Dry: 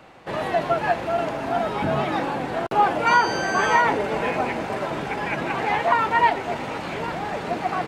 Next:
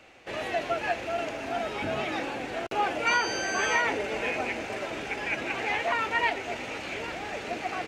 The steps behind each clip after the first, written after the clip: fifteen-band EQ 160 Hz -11 dB, 1000 Hz -7 dB, 2500 Hz +7 dB, 6300 Hz +7 dB; gain -5.5 dB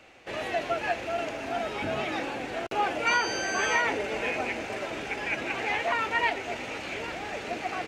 nothing audible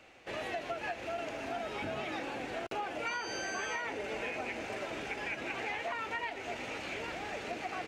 compressor, threshold -30 dBFS, peak gain reduction 9.5 dB; gain -4 dB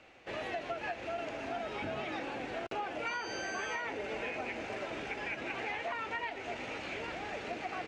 air absorption 59 m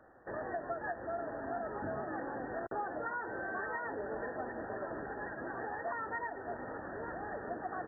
brick-wall FIR low-pass 1900 Hz

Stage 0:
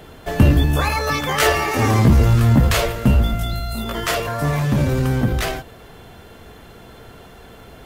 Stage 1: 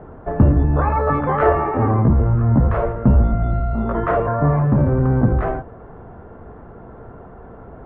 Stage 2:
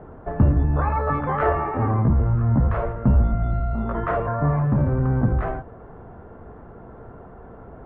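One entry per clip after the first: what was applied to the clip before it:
LPF 1300 Hz 24 dB/oct; vocal rider within 4 dB 0.5 s; gain +1.5 dB
dynamic EQ 400 Hz, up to -4 dB, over -29 dBFS, Q 0.79; gain -3 dB

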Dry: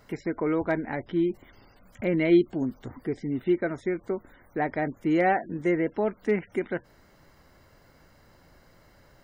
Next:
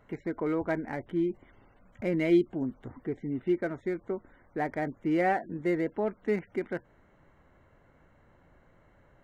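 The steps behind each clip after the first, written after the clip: Wiener smoothing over 9 samples; gain -3.5 dB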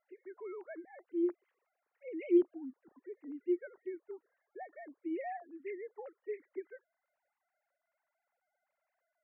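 sine-wave speech; gain -8 dB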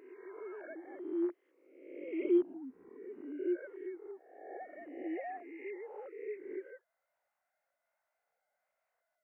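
spectral swells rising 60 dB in 1.01 s; gain -2.5 dB

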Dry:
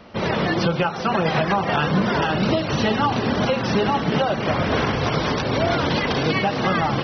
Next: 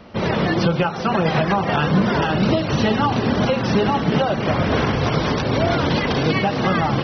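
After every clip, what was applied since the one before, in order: low shelf 390 Hz +4 dB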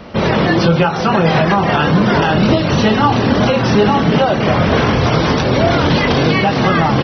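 in parallel at +1 dB: limiter -18 dBFS, peak gain reduction 11.5 dB; on the sum: doubler 24 ms -8 dB; gain +2 dB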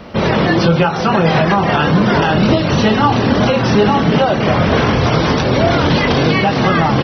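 requantised 12-bit, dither none

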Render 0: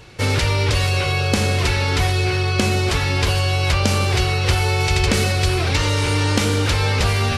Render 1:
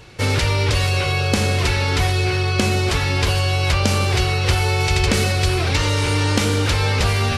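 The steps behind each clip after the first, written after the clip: nothing audible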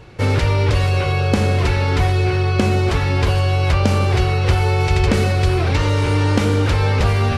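high shelf 2400 Hz -12 dB; gain +3 dB

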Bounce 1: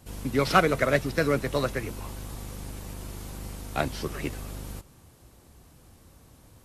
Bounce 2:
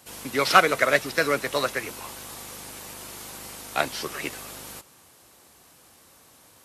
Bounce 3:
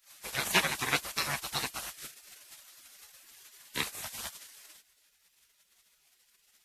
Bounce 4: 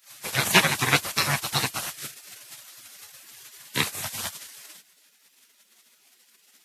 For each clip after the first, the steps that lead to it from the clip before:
HPF 920 Hz 6 dB/oct; gain +7 dB
spectral gate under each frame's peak -15 dB weak
high-pass sweep 110 Hz -> 240 Hz, 4.38–5.23; gain +8 dB

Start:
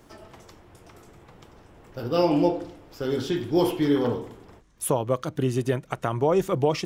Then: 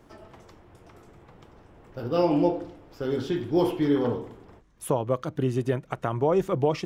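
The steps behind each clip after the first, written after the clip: high shelf 3500 Hz -8.5 dB; gain -1 dB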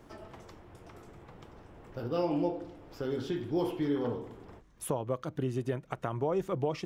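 compressor 1.5:1, threshold -41 dBFS, peak gain reduction 8.5 dB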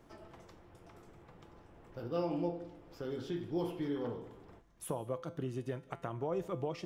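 resonator 170 Hz, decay 0.42 s, harmonics all, mix 60%; on a send at -20 dB: reverb RT60 0.60 s, pre-delay 0.12 s; on the sum: gain +1 dB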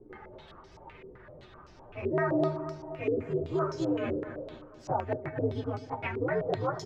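inharmonic rescaling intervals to 129%; feedback echo 0.24 s, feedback 55%, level -11.5 dB; stepped low-pass 7.8 Hz 400–5400 Hz; gain +7 dB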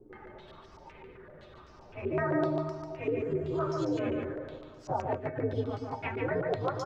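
echo 0.144 s -4 dB; gain -2 dB

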